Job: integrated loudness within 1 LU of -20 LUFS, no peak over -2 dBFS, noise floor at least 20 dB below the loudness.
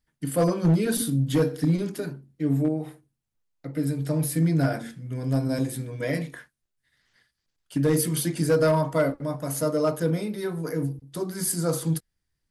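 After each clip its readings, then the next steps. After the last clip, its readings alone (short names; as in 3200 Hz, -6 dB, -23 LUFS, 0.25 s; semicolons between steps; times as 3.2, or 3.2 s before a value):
clipped 0.7%; flat tops at -15.0 dBFS; loudness -26.0 LUFS; peak -15.0 dBFS; loudness target -20.0 LUFS
-> clip repair -15 dBFS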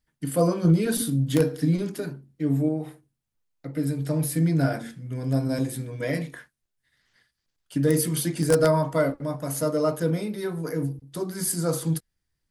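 clipped 0.0%; loudness -25.5 LUFS; peak -6.0 dBFS; loudness target -20.0 LUFS
-> gain +5.5 dB; limiter -2 dBFS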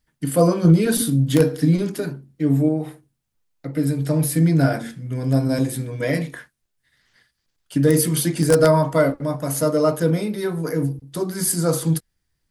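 loudness -20.0 LUFS; peak -2.0 dBFS; noise floor -75 dBFS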